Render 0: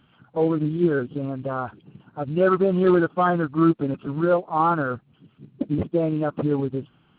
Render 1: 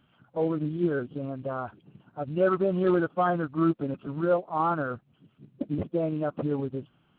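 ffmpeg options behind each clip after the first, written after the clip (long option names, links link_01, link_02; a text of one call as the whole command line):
ffmpeg -i in.wav -af "superequalizer=8b=1.41:14b=0.708,volume=-6dB" out.wav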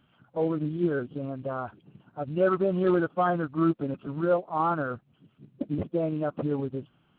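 ffmpeg -i in.wav -af anull out.wav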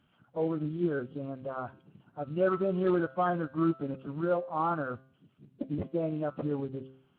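ffmpeg -i in.wav -af "bandreject=frequency=132.1:width_type=h:width=4,bandreject=frequency=264.2:width_type=h:width=4,bandreject=frequency=396.3:width_type=h:width=4,bandreject=frequency=528.4:width_type=h:width=4,bandreject=frequency=660.5:width_type=h:width=4,bandreject=frequency=792.6:width_type=h:width=4,bandreject=frequency=924.7:width_type=h:width=4,bandreject=frequency=1056.8:width_type=h:width=4,bandreject=frequency=1188.9:width_type=h:width=4,bandreject=frequency=1321:width_type=h:width=4,bandreject=frequency=1453.1:width_type=h:width=4,bandreject=frequency=1585.2:width_type=h:width=4,bandreject=frequency=1717.3:width_type=h:width=4,bandreject=frequency=1849.4:width_type=h:width=4,bandreject=frequency=1981.5:width_type=h:width=4,bandreject=frequency=2113.6:width_type=h:width=4,bandreject=frequency=2245.7:width_type=h:width=4,bandreject=frequency=2377.8:width_type=h:width=4,bandreject=frequency=2509.9:width_type=h:width=4,bandreject=frequency=2642:width_type=h:width=4,bandreject=frequency=2774.1:width_type=h:width=4,bandreject=frequency=2906.2:width_type=h:width=4,bandreject=frequency=3038.3:width_type=h:width=4,bandreject=frequency=3170.4:width_type=h:width=4,bandreject=frequency=3302.5:width_type=h:width=4,bandreject=frequency=3434.6:width_type=h:width=4,bandreject=frequency=3566.7:width_type=h:width=4,bandreject=frequency=3698.8:width_type=h:width=4,bandreject=frequency=3830.9:width_type=h:width=4,bandreject=frequency=3963:width_type=h:width=4,bandreject=frequency=4095.1:width_type=h:width=4,bandreject=frequency=4227.2:width_type=h:width=4,bandreject=frequency=4359.3:width_type=h:width=4,bandreject=frequency=4491.4:width_type=h:width=4,volume=-3.5dB" -ar 32000 -c:a libvorbis -b:a 64k out.ogg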